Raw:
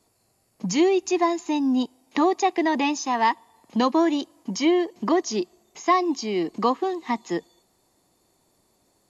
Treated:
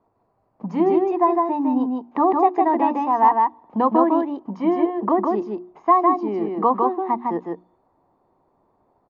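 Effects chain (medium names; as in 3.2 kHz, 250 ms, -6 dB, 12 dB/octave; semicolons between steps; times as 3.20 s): resonant low-pass 1 kHz, resonance Q 1.9; hum notches 60/120/180/240/300/360 Hz; delay 156 ms -3 dB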